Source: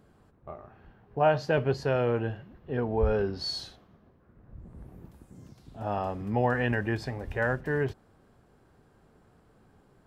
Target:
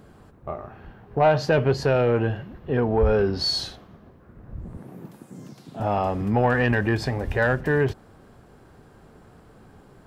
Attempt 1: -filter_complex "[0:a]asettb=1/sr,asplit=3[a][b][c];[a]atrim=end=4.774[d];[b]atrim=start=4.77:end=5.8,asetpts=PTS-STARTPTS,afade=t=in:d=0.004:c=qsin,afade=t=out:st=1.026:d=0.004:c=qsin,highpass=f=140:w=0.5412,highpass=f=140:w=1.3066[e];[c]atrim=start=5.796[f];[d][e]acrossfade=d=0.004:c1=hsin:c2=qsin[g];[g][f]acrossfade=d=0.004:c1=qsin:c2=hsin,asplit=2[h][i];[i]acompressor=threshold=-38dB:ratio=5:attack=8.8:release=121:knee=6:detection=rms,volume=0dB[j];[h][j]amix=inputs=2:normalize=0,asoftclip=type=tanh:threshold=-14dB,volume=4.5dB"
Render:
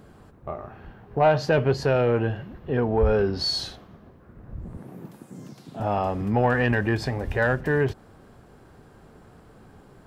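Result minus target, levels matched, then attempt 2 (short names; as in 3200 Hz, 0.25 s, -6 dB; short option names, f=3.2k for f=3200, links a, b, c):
compressor: peak gain reduction +5 dB
-filter_complex "[0:a]asettb=1/sr,asplit=3[a][b][c];[a]atrim=end=4.774[d];[b]atrim=start=4.77:end=5.8,asetpts=PTS-STARTPTS,afade=t=in:d=0.004:c=qsin,afade=t=out:st=1.026:d=0.004:c=qsin,highpass=f=140:w=0.5412,highpass=f=140:w=1.3066[e];[c]atrim=start=5.796[f];[d][e]acrossfade=d=0.004:c1=hsin:c2=qsin[g];[g][f]acrossfade=d=0.004:c1=qsin:c2=hsin,asplit=2[h][i];[i]acompressor=threshold=-31.5dB:ratio=5:attack=8.8:release=121:knee=6:detection=rms,volume=0dB[j];[h][j]amix=inputs=2:normalize=0,asoftclip=type=tanh:threshold=-14dB,volume=4.5dB"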